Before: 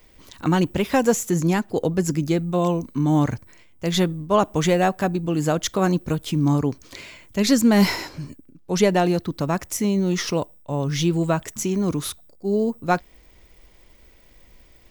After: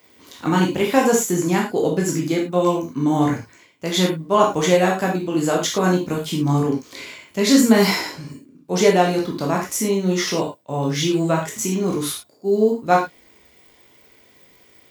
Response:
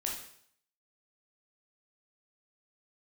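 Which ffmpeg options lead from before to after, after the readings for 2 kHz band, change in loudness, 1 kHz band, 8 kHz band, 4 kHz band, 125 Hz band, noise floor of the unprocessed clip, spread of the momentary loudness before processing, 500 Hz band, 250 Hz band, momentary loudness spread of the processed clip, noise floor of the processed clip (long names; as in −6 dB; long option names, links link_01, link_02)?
+4.0 dB, +2.5 dB, +4.0 dB, +4.0 dB, +4.0 dB, −1.0 dB, −52 dBFS, 10 LU, +4.0 dB, +1.5 dB, 11 LU, −54 dBFS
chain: -filter_complex "[0:a]highpass=160[link_01];[1:a]atrim=start_sample=2205,atrim=end_sample=6174,asetrate=52920,aresample=44100[link_02];[link_01][link_02]afir=irnorm=-1:irlink=0,volume=3.5dB"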